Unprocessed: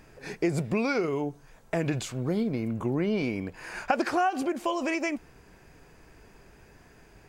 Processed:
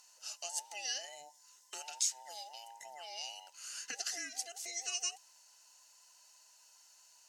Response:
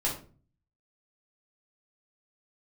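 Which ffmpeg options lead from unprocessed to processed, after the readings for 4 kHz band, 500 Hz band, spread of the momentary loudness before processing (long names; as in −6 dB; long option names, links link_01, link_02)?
+2.0 dB, −25.5 dB, 9 LU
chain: -af "afftfilt=real='real(if(between(b,1,1008),(2*floor((b-1)/48)+1)*48-b,b),0)':imag='imag(if(between(b,1,1008),(2*floor((b-1)/48)+1)*48-b,b),0)*if(between(b,1,1008),-1,1)':win_size=2048:overlap=0.75,bandpass=frequency=6000:width_type=q:width=2.8:csg=0,aemphasis=mode=production:type=50fm,volume=3.5dB"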